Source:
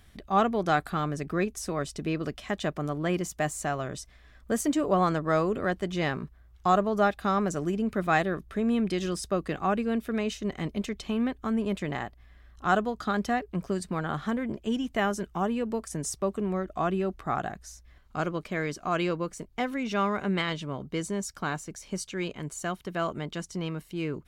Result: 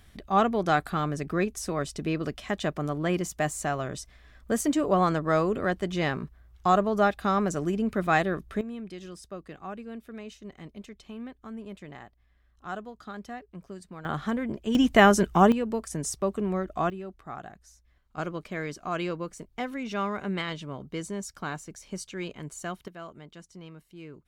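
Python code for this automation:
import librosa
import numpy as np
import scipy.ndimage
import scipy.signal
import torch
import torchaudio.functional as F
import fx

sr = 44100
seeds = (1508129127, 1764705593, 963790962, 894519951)

y = fx.gain(x, sr, db=fx.steps((0.0, 1.0), (8.61, -12.0), (14.05, 0.5), (14.75, 10.0), (15.52, 1.0), (16.9, -10.0), (18.18, -3.0), (22.88, -12.5)))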